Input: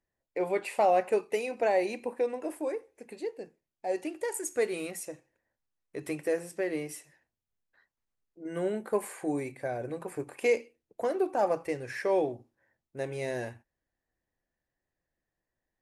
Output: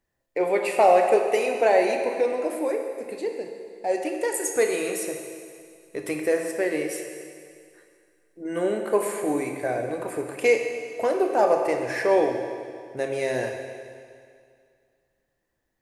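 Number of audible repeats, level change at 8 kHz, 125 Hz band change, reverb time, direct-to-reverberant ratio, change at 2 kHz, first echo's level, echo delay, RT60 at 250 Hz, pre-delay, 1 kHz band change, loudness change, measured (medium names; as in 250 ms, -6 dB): no echo, +8.5 dB, +2.0 dB, 2.2 s, 3.5 dB, +8.5 dB, no echo, no echo, 2.2 s, 24 ms, +8.0 dB, +7.5 dB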